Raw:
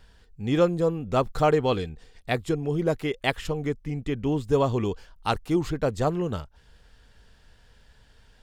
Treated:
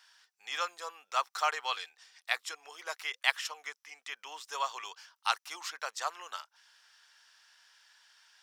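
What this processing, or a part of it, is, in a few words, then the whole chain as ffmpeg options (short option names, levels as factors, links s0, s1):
headphones lying on a table: -af "highpass=f=1000:w=0.5412,highpass=f=1000:w=1.3066,equalizer=f=5600:t=o:w=0.33:g=9"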